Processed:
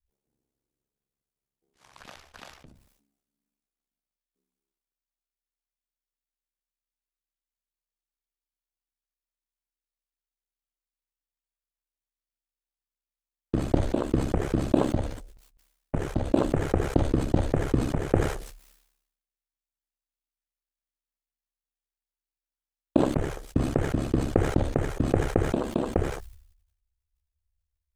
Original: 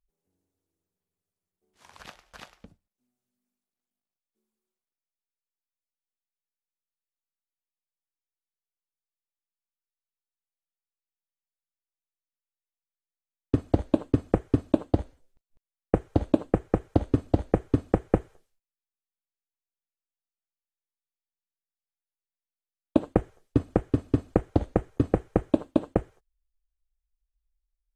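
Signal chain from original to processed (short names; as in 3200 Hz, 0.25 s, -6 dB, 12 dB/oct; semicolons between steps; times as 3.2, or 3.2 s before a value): ring modulator 34 Hz; sustainer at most 72 dB/s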